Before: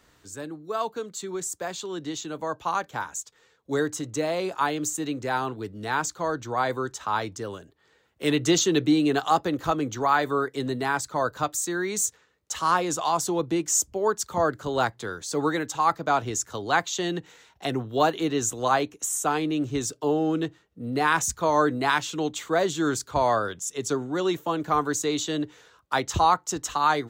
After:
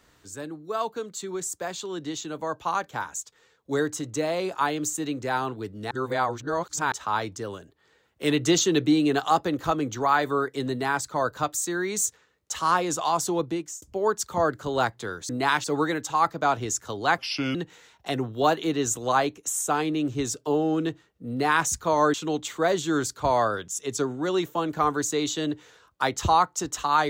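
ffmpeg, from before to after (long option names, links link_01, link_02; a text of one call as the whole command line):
ffmpeg -i in.wav -filter_complex "[0:a]asplit=9[link_01][link_02][link_03][link_04][link_05][link_06][link_07][link_08][link_09];[link_01]atrim=end=5.912[link_10];[link_02]atrim=start=5.908:end=6.922,asetpts=PTS-STARTPTS,areverse[link_11];[link_03]atrim=start=6.918:end=13.82,asetpts=PTS-STARTPTS,afade=type=out:start_time=6.492:duration=0.41[link_12];[link_04]atrim=start=13.82:end=15.292,asetpts=PTS-STARTPTS,afade=type=in:duration=0.004:curve=hsin[link_13];[link_05]atrim=start=21.698:end=22.052[link_14];[link_06]atrim=start=15.288:end=16.834[link_15];[link_07]atrim=start=16.83:end=17.11,asetpts=PTS-STARTPTS,asetrate=33516,aresample=44100,atrim=end_sample=16247,asetpts=PTS-STARTPTS[link_16];[link_08]atrim=start=17.106:end=21.702[link_17];[link_09]atrim=start=22.048[link_18];[link_10][link_11]acrossfade=duration=0.004:curve1=hsin:curve2=hsin[link_19];[link_12][link_13]concat=n=2:v=0:a=1[link_20];[link_19][link_20]acrossfade=duration=0.004:curve1=hsin:curve2=hsin[link_21];[link_21][link_14]acrossfade=duration=0.004:curve1=hsin:curve2=hsin[link_22];[link_22][link_15]acrossfade=duration=0.004:curve1=hsin:curve2=hsin[link_23];[link_23][link_16]acrossfade=duration=0.004:curve1=hsin:curve2=hsin[link_24];[link_24][link_17]acrossfade=duration=0.004:curve1=hsin:curve2=hsin[link_25];[link_25][link_18]acrossfade=duration=0.004:curve1=hsin:curve2=hsin" out.wav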